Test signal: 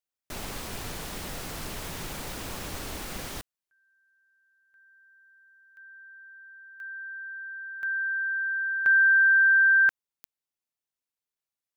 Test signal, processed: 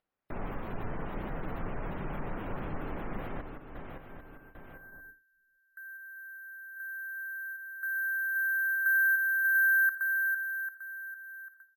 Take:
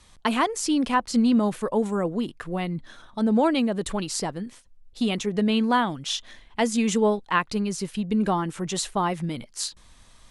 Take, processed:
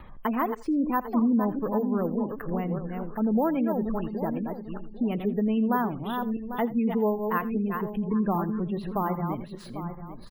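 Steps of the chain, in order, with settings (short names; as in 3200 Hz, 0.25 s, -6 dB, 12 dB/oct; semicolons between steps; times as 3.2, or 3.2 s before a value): regenerating reverse delay 0.398 s, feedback 42%, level -7 dB; LPF 1600 Hz 12 dB/oct; in parallel at +2 dB: compressor, threshold -30 dBFS; on the sum: bell 62 Hz -9 dB 1.3 oct; upward compressor, threshold -33 dBFS; gate with hold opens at -36 dBFS, closes at -40 dBFS, hold 0.106 s, range -23 dB; careless resampling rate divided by 3×, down none, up hold; spectral gate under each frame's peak -30 dB strong; low shelf 160 Hz +6 dB; on a send: echo 84 ms -18.5 dB; on the sum: gain -7 dB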